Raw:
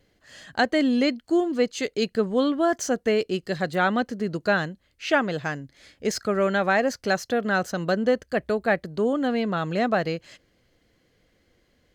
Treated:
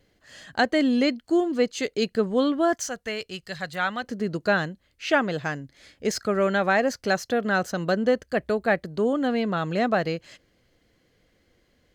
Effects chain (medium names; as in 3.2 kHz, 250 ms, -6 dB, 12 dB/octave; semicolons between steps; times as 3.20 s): 2.74–4.04 s: peaking EQ 320 Hz -14.5 dB 2 oct